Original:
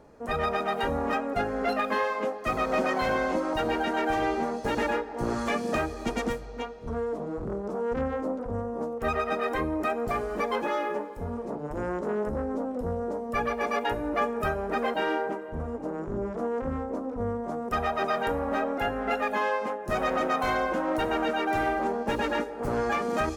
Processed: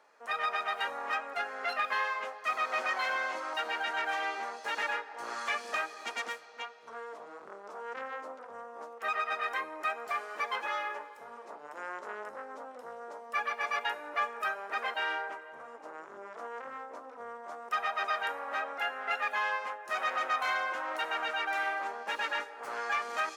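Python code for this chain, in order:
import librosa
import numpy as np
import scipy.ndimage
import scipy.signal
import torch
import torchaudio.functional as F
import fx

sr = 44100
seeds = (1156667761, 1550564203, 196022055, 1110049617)

p1 = scipy.signal.sosfilt(scipy.signal.butter(2, 1300.0, 'highpass', fs=sr, output='sos'), x)
p2 = 10.0 ** (-29.0 / 20.0) * np.tanh(p1 / 10.0 ** (-29.0 / 20.0))
p3 = p1 + F.gain(torch.from_numpy(p2), -9.0).numpy()
y = fx.lowpass(p3, sr, hz=4000.0, slope=6)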